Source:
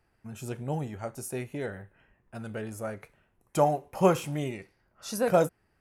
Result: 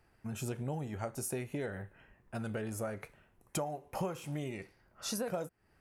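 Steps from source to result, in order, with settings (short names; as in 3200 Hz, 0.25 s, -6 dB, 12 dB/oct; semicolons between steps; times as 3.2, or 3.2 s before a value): compressor 12:1, threshold -36 dBFS, peak gain reduction 20.5 dB; gain +2.5 dB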